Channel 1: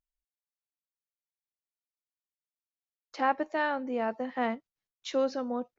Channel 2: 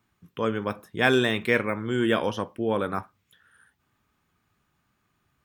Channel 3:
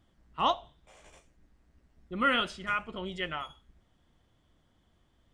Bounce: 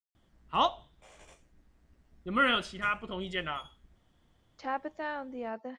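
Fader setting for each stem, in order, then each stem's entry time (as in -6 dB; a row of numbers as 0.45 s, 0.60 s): -7.0 dB, mute, +0.5 dB; 1.45 s, mute, 0.15 s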